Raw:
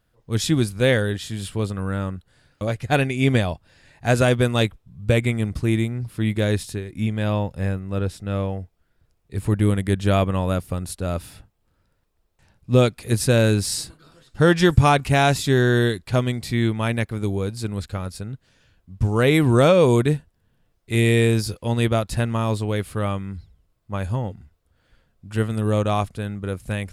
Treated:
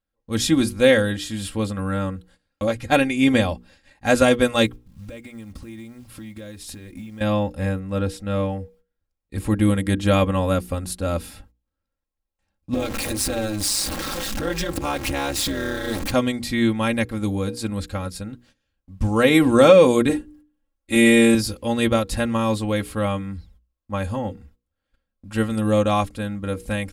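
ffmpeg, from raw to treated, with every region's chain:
-filter_complex "[0:a]asettb=1/sr,asplit=3[s0][s1][s2];[s0]atrim=end=4.664[s3];[s1]atrim=start=4.66:end=7.21,asetpts=PTS-STARTPTS,afade=t=in:d=0.004:c=qsin,afade=t=out:st=2.546:d=0.004:c=qsin,acompressor=threshold=0.0224:ratio=20:attack=3.2:release=140:knee=1:detection=peak,acrusher=bits=7:mode=log:mix=0:aa=0.000001[s4];[s2]atrim=start=7.206[s5];[s3][s4]acrossfade=d=0.004:c1=hsin:c2=qsin[s6];[s6][s5]acrossfade=d=0.004:c1=qsin:c2=hsin,asettb=1/sr,asplit=3[s7][s8][s9];[s7]atrim=end=12.744[s10];[s8]atrim=start=12.74:end=16.12,asetpts=PTS-STARTPTS,afade=t=in:d=0.004:c=qsin,afade=t=out:st=3.376:d=0.004:c=qsin,aeval=exprs='val(0)+0.5*0.0891*sgn(val(0))':c=same,acompressor=threshold=0.126:ratio=10:attack=3.2:release=140:knee=1:detection=peak,tremolo=f=210:d=0.824[s11];[s9]atrim=start=16.116[s12];[s10][s11]acrossfade=d=0.004:c1=hsin:c2=qsin[s13];[s13][s12]acrossfade=d=0.004:c1=qsin:c2=hsin,asettb=1/sr,asplit=3[s14][s15][s16];[s14]atrim=end=20.094[s17];[s15]atrim=start=20.09:end=21.35,asetpts=PTS-STARTPTS,afade=t=in:d=0.004:c=qsin,afade=t=out:st=1.256:d=0.004:c=qsin,bandreject=f=60:t=h:w=6,bandreject=f=120:t=h:w=6,bandreject=f=180:t=h:w=6,bandreject=f=240:t=h:w=6,bandreject=f=300:t=h:w=6,aecho=1:1:3.6:0.95,atrim=end_sample=55566[s18];[s16]atrim=start=21.346[s19];[s17][s18]acrossfade=d=0.004:c1=hsin:c2=qsin[s20];[s20][s19]acrossfade=d=0.004:c1=qsin:c2=hsin,agate=range=0.112:threshold=0.00282:ratio=16:detection=peak,bandreject=f=60:t=h:w=6,bandreject=f=120:t=h:w=6,bandreject=f=180:t=h:w=6,bandreject=f=240:t=h:w=6,bandreject=f=300:t=h:w=6,bandreject=f=360:t=h:w=6,bandreject=f=420:t=h:w=6,bandreject=f=480:t=h:w=6,aecho=1:1:3.7:0.71,volume=1.12"

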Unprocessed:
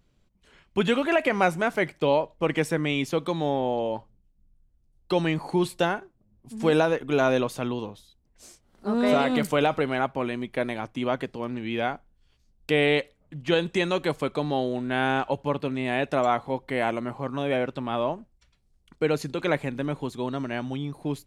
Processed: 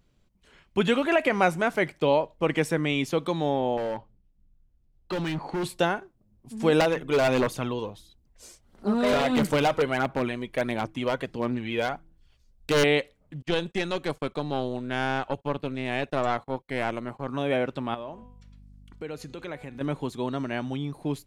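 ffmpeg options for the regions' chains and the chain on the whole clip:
-filter_complex "[0:a]asettb=1/sr,asplit=3[s0][s1][s2];[s0]atrim=end=3.774[s3];[s1]atrim=start=3.77:end=5.64,asetpts=PTS-STARTPTS,afade=t=in:d=0.004:c=qsin,afade=t=out:st=1.866:d=0.004:c=qsin,lowpass=4000,volume=20,asoftclip=hard,volume=0.0501[s4];[s2]atrim=start=5.636[s5];[s3][s4]acrossfade=d=0.004:c1=hsin:c2=qsin[s6];[s6][s5]acrossfade=d=0.004:c1=qsin:c2=hsin,asettb=1/sr,asplit=3[s7][s8][s9];[s7]atrim=end=6.804[s10];[s8]atrim=start=6.8:end=12.84,asetpts=PTS-STARTPTS,afade=t=in:d=0.004:c=qsin,afade=t=out:st=6.036:d=0.004:c=qsin,bandreject=f=162.2:t=h:w=4,bandreject=f=324.4:t=h:w=4,aphaser=in_gain=1:out_gain=1:delay=2.1:decay=0.41:speed=1.5:type=sinusoidal,aeval=exprs='0.158*(abs(mod(val(0)/0.158+3,4)-2)-1)':c=same[s11];[s9]atrim=start=12.836[s12];[s10][s11]acrossfade=d=0.004:c1=hsin:c2=qsin[s13];[s13][s12]acrossfade=d=0.004:c1=qsin:c2=hsin,asettb=1/sr,asplit=3[s14][s15][s16];[s14]atrim=end=13.424[s17];[s15]atrim=start=13.42:end=17.28,asetpts=PTS-STARTPTS,afade=t=in:d=0.004:c=qsin,afade=t=out:st=3.856:d=0.004:c=qsin,agate=range=0.0355:threshold=0.00794:ratio=16:release=100:detection=peak,aeval=exprs='(tanh(7.08*val(0)+0.75)-tanh(0.75))/7.08':c=same[s18];[s16]atrim=start=17.276[s19];[s17][s18]acrossfade=d=0.004:c1=hsin:c2=qsin[s20];[s20][s19]acrossfade=d=0.004:c1=qsin:c2=hsin,asettb=1/sr,asplit=3[s21][s22][s23];[s21]atrim=end=17.944[s24];[s22]atrim=start=17.94:end=19.81,asetpts=PTS-STARTPTS,afade=t=in:d=0.004:c=qsin,afade=t=out:st=1.866:d=0.004:c=qsin,aeval=exprs='val(0)+0.00355*(sin(2*PI*50*n/s)+sin(2*PI*2*50*n/s)/2+sin(2*PI*3*50*n/s)/3+sin(2*PI*4*50*n/s)/4+sin(2*PI*5*50*n/s)/5)':c=same,bandreject=f=247.2:t=h:w=4,bandreject=f=494.4:t=h:w=4,bandreject=f=741.6:t=h:w=4,bandreject=f=988.8:t=h:w=4,bandreject=f=1236:t=h:w=4,bandreject=f=1483.2:t=h:w=4,bandreject=f=1730.4:t=h:w=4,bandreject=f=1977.6:t=h:w=4,bandreject=f=2224.8:t=h:w=4,bandreject=f=2472:t=h:w=4,bandreject=f=2719.2:t=h:w=4,bandreject=f=2966.4:t=h:w=4,bandreject=f=3213.6:t=h:w=4,bandreject=f=3460.8:t=h:w=4,bandreject=f=3708:t=h:w=4,bandreject=f=3955.2:t=h:w=4,bandreject=f=4202.4:t=h:w=4,bandreject=f=4449.6:t=h:w=4,bandreject=f=4696.8:t=h:w=4,bandreject=f=4944:t=h:w=4,bandreject=f=5191.2:t=h:w=4,bandreject=f=5438.4:t=h:w=4,bandreject=f=5685.6:t=h:w=4,bandreject=f=5932.8:t=h:w=4,bandreject=f=6180:t=h:w=4,bandreject=f=6427.2:t=h:w=4,bandreject=f=6674.4:t=h:w=4,bandreject=f=6921.6:t=h:w=4,bandreject=f=7168.8:t=h:w=4,bandreject=f=7416:t=h:w=4,bandreject=f=7663.2:t=h:w=4,bandreject=f=7910.4:t=h:w=4,acompressor=threshold=0.00794:ratio=2:attack=3.2:release=140:knee=1:detection=peak[s25];[s23]atrim=start=19.806[s26];[s24][s25]acrossfade=d=0.004:c1=hsin:c2=qsin[s27];[s27][s26]acrossfade=d=0.004:c1=qsin:c2=hsin"

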